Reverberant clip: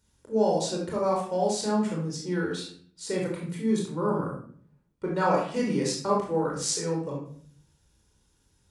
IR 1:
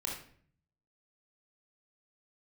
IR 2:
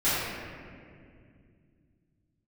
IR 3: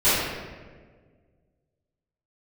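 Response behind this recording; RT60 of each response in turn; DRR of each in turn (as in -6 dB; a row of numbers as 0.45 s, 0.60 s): 1; 0.55 s, 2.3 s, 1.6 s; -2.5 dB, -14.5 dB, -17.5 dB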